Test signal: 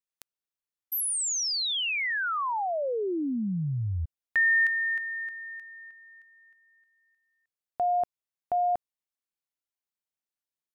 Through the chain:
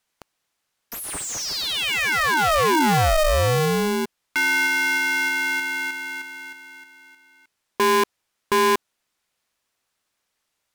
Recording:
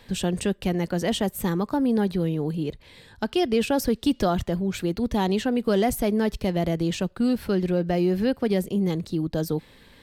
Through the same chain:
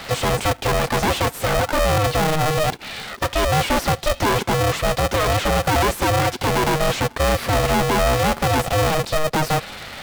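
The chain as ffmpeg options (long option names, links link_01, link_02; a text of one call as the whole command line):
ffmpeg -i in.wav -filter_complex "[0:a]equalizer=frequency=9300:width_type=o:width=2.4:gain=8,asplit=2[link_01][link_02];[link_02]highpass=frequency=720:poles=1,volume=31dB,asoftclip=type=tanh:threshold=-10.5dB[link_03];[link_01][link_03]amix=inputs=2:normalize=0,lowpass=frequency=1200:poles=1,volume=-6dB,aeval=exprs='val(0)*sgn(sin(2*PI*310*n/s))':channel_layout=same" out.wav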